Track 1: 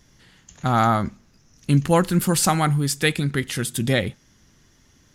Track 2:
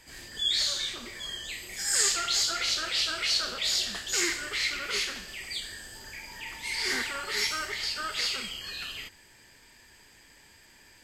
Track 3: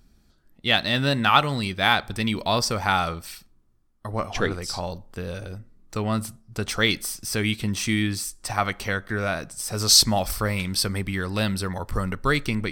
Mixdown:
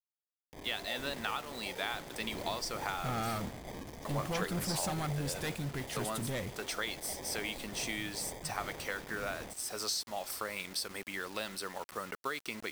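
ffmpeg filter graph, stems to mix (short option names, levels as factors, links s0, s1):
-filter_complex "[0:a]volume=10.6,asoftclip=hard,volume=0.0944,adelay=2400,volume=0.237[s0];[1:a]acompressor=threshold=0.0112:ratio=5,acrusher=samples=32:mix=1:aa=0.000001,adelay=450,volume=0.596[s1];[2:a]highpass=400,acompressor=threshold=0.0562:ratio=12,volume=0.422[s2];[s0][s1][s2]amix=inputs=3:normalize=0,acrusher=bits=7:mix=0:aa=0.000001"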